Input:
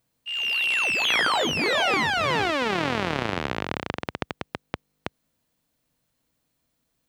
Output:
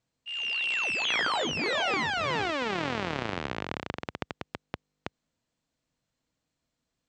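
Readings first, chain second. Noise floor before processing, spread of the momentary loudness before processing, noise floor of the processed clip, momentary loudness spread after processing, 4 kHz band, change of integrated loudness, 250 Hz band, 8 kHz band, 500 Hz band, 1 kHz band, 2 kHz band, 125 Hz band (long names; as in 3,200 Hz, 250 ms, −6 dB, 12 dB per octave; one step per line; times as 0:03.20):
−75 dBFS, 17 LU, −84 dBFS, 17 LU, −5.5 dB, −5.5 dB, −5.5 dB, −6.0 dB, −5.5 dB, −5.5 dB, −5.5 dB, −5.5 dB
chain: Butterworth low-pass 8,200 Hz 72 dB per octave
level −5.5 dB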